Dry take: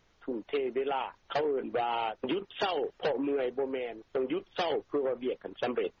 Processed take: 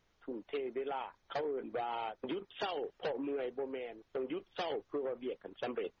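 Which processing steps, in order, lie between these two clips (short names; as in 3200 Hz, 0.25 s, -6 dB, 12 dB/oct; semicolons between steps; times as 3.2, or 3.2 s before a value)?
0.6–2.5 notch 2800 Hz, Q 9.1; gain -7 dB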